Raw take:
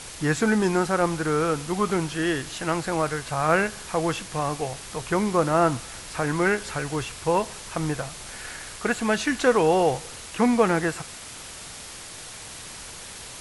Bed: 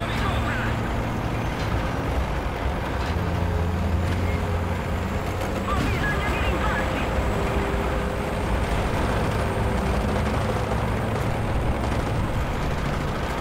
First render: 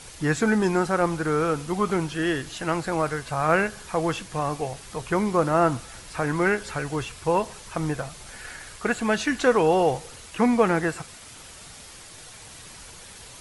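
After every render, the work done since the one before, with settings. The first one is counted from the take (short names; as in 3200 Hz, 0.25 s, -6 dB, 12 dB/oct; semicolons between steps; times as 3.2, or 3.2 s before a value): denoiser 6 dB, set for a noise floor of -40 dBFS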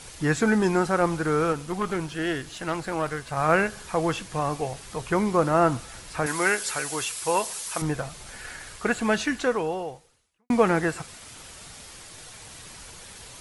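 1.52–3.37 tube stage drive 18 dB, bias 0.6; 6.26–7.82 RIAA curve recording; 9.17–10.5 fade out quadratic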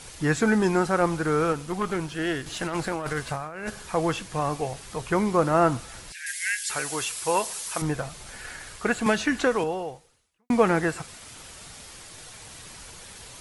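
2.46–3.7 negative-ratio compressor -31 dBFS; 6.12–6.7 Chebyshev high-pass 1600 Hz, order 8; 9.06–9.64 three-band squash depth 100%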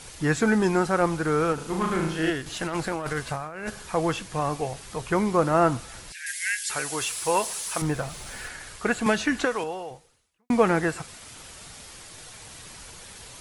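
1.54–2.3 flutter echo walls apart 6.4 m, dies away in 0.66 s; 7.01–8.48 G.711 law mismatch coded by mu; 9.45–9.91 low shelf 470 Hz -8.5 dB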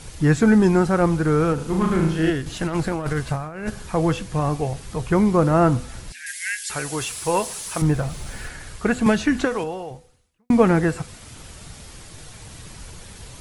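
low shelf 300 Hz +12 dB; de-hum 249.8 Hz, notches 3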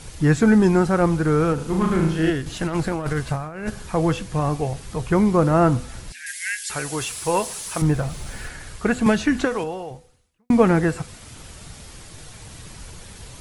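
nothing audible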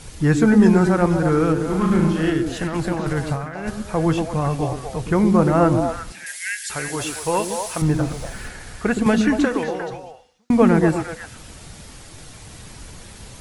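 delay with a stepping band-pass 0.118 s, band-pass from 260 Hz, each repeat 1.4 oct, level -0.5 dB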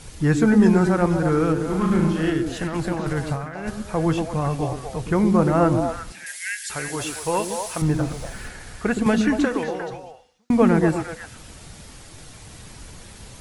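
gain -2 dB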